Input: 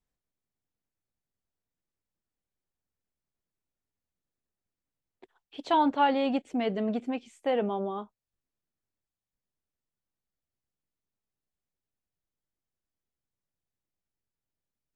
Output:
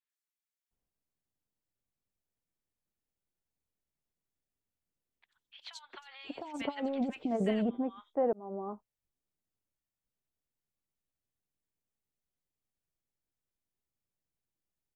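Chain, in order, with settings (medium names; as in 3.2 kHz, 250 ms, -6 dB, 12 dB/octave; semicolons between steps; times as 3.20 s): 5.63–7.06 s: compressor with a negative ratio -30 dBFS, ratio -0.5; 7.62–8.03 s: fade in; three bands offset in time mids, highs, lows 90/710 ms, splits 1.3/4.2 kHz; trim -1.5 dB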